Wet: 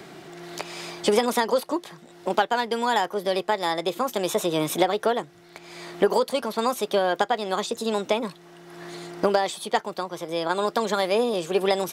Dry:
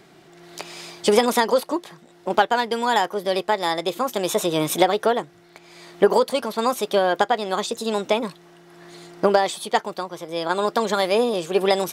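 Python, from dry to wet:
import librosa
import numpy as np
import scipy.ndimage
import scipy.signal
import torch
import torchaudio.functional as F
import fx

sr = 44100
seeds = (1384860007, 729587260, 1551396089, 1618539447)

y = fx.band_squash(x, sr, depth_pct=40)
y = y * librosa.db_to_amplitude(-3.0)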